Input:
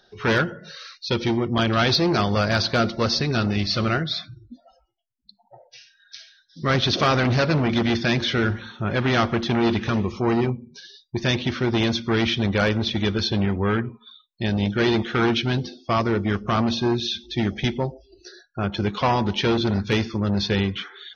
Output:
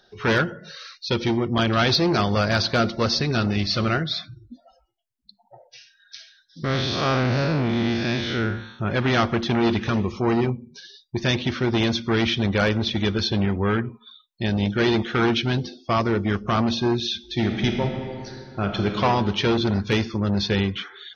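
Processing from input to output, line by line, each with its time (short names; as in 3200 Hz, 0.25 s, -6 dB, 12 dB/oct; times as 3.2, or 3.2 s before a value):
6.64–8.79 time blur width 0.141 s
17.18–19 reverb throw, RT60 2.4 s, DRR 3.5 dB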